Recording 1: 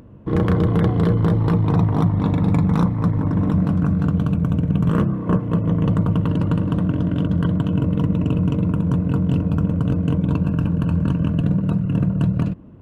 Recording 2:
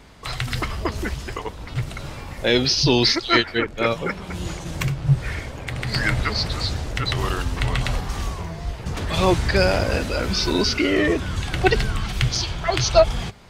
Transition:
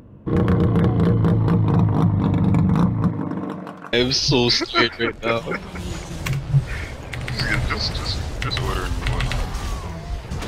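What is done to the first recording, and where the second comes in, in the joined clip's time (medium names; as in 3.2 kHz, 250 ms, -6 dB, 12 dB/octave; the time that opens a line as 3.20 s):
recording 1
3.07–3.93 s: high-pass 150 Hz -> 910 Hz
3.93 s: go over to recording 2 from 2.48 s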